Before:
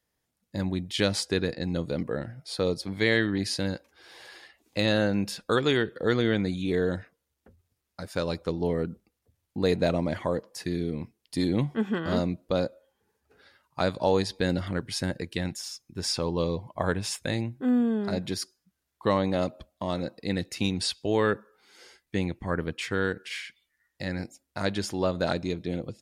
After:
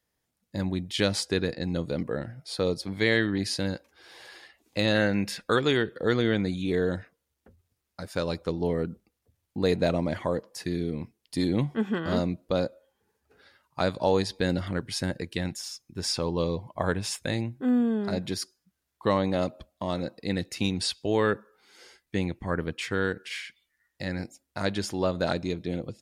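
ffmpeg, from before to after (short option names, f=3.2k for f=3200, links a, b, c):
-filter_complex "[0:a]asettb=1/sr,asplit=3[a][b][c];[a]atrim=end=4.954[d];[b]atrim=start=4.95:end=5.57,asetpts=PTS-STARTPTS,afade=t=in:d=0.004:c=qsin,afade=t=out:st=0.616:d=0.004:c=qsin,equalizer=f=2k:w=2.3:g=10.5[e];[c]atrim=start=5.566[f];[d][e]acrossfade=d=0.004:c1=hsin:c2=qsin[g];[g][f]acrossfade=d=0.004:c1=qsin:c2=hsin"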